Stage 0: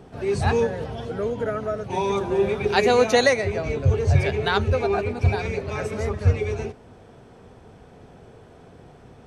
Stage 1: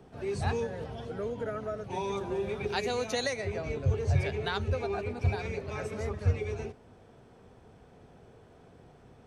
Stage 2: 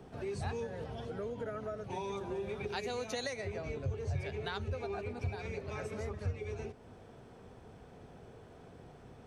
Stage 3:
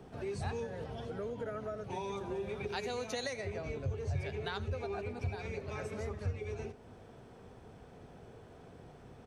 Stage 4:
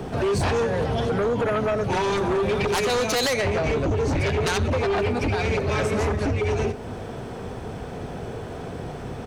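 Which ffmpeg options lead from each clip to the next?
-filter_complex "[0:a]acrossover=split=140|3000[a][b][c];[b]acompressor=threshold=-21dB:ratio=6[d];[a][d][c]amix=inputs=3:normalize=0,volume=-8dB"
-af "acompressor=threshold=-43dB:ratio=2,volume=1.5dB"
-af "aecho=1:1:85:0.112"
-af "aeval=exprs='0.0668*sin(PI/2*3.98*val(0)/0.0668)':c=same,volume=4.5dB"

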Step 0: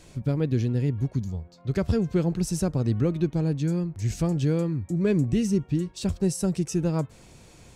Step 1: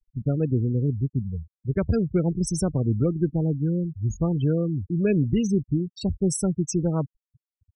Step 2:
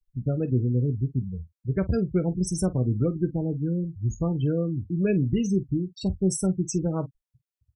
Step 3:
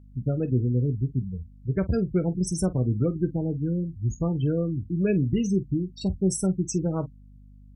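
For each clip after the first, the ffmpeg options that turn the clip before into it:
-af "afftfilt=real='re*gte(hypot(re,im),0.0355)':imag='im*gte(hypot(re,im),0.0355)':win_size=1024:overlap=0.75,aemphasis=mode=production:type=cd,volume=1.5dB"
-af "aecho=1:1:16|48:0.299|0.141,volume=-2dB"
-af "aeval=exprs='val(0)+0.00398*(sin(2*PI*50*n/s)+sin(2*PI*2*50*n/s)/2+sin(2*PI*3*50*n/s)/3+sin(2*PI*4*50*n/s)/4+sin(2*PI*5*50*n/s)/5)':c=same" -ar 48000 -c:a libopus -b:a 192k

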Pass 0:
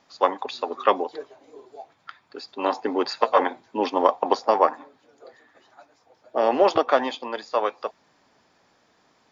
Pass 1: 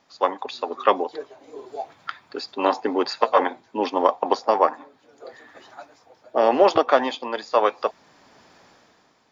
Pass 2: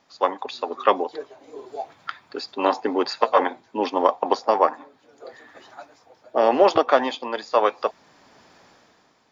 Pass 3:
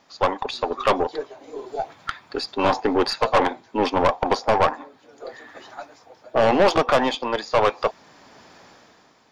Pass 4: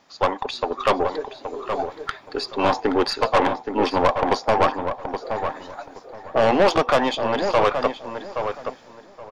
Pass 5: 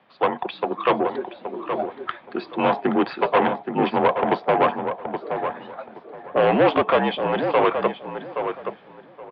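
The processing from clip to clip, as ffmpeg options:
-af "dynaudnorm=f=120:g=11:m=12.5dB,volume=-1dB"
-af anull
-af "aeval=exprs='(tanh(7.08*val(0)+0.35)-tanh(0.35))/7.08':c=same,volume=5.5dB"
-filter_complex "[0:a]asplit=2[a][b];[b]adelay=823,lowpass=f=2.1k:p=1,volume=-7dB,asplit=2[c][d];[d]adelay=823,lowpass=f=2.1k:p=1,volume=0.22,asplit=2[e][f];[f]adelay=823,lowpass=f=2.1k:p=1,volume=0.22[g];[a][c][e][g]amix=inputs=4:normalize=0"
-af "highpass=f=180:t=q:w=0.5412,highpass=f=180:t=q:w=1.307,lowpass=f=3.4k:t=q:w=0.5176,lowpass=f=3.4k:t=q:w=0.7071,lowpass=f=3.4k:t=q:w=1.932,afreqshift=-56"

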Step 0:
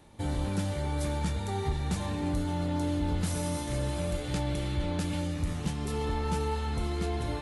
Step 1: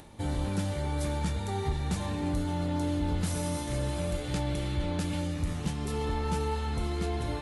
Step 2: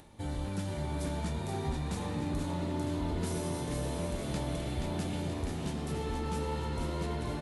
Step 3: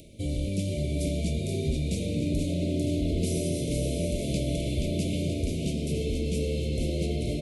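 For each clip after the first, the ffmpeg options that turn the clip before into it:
-af "acompressor=mode=upward:threshold=-45dB:ratio=2.5"
-filter_complex "[0:a]asplit=9[a][b][c][d][e][f][g][h][i];[b]adelay=478,afreqshift=80,volume=-5.5dB[j];[c]adelay=956,afreqshift=160,volume=-10.4dB[k];[d]adelay=1434,afreqshift=240,volume=-15.3dB[l];[e]adelay=1912,afreqshift=320,volume=-20.1dB[m];[f]adelay=2390,afreqshift=400,volume=-25dB[n];[g]adelay=2868,afreqshift=480,volume=-29.9dB[o];[h]adelay=3346,afreqshift=560,volume=-34.8dB[p];[i]adelay=3824,afreqshift=640,volume=-39.7dB[q];[a][j][k][l][m][n][o][p][q]amix=inputs=9:normalize=0,volume=-5dB"
-af "asuperstop=centerf=1200:order=20:qfactor=0.8,volume=6.5dB"

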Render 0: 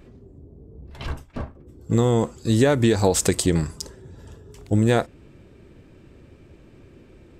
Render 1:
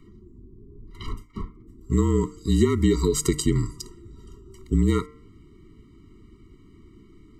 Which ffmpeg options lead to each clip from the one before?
-af "afreqshift=-36,bandreject=f=150.2:t=h:w=4,bandreject=f=300.4:t=h:w=4,bandreject=f=450.6:t=h:w=4,bandreject=f=600.8:t=h:w=4,bandreject=f=751:t=h:w=4,bandreject=f=901.2:t=h:w=4,bandreject=f=1.0514k:t=h:w=4,bandreject=f=1.2016k:t=h:w=4,bandreject=f=1.3518k:t=h:w=4,bandreject=f=1.502k:t=h:w=4,bandreject=f=1.6522k:t=h:w=4,bandreject=f=1.8024k:t=h:w=4,bandreject=f=1.9526k:t=h:w=4,bandreject=f=2.1028k:t=h:w=4,bandreject=f=2.253k:t=h:w=4,bandreject=f=2.4032k:t=h:w=4,bandreject=f=2.5534k:t=h:w=4,afftfilt=real='re*eq(mod(floor(b*sr/1024/460),2),0)':imag='im*eq(mod(floor(b*sr/1024/460),2),0)':win_size=1024:overlap=0.75,volume=-1dB"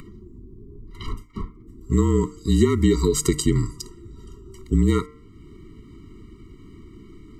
-af "acompressor=mode=upward:threshold=-38dB:ratio=2.5,volume=2dB"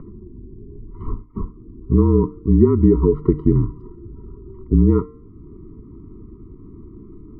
-af "lowpass=f=1k:w=0.5412,lowpass=f=1k:w=1.3066,volume=4.5dB"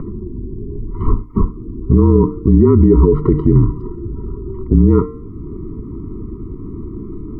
-af "alimiter=level_in=13dB:limit=-1dB:release=50:level=0:latency=1,volume=-1dB"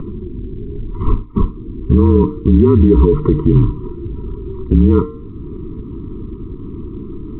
-ar 8000 -c:a pcm_mulaw

